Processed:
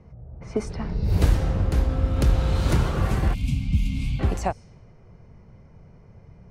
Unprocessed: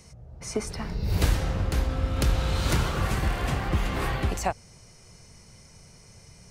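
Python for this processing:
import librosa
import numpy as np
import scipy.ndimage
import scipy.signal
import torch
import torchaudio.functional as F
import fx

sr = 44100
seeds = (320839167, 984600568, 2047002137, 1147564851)

y = fx.spec_box(x, sr, start_s=3.34, length_s=0.86, low_hz=280.0, high_hz=2100.0, gain_db=-27)
y = fx.env_lowpass(y, sr, base_hz=1500.0, full_db=-23.0)
y = fx.tilt_shelf(y, sr, db=4.5, hz=970.0)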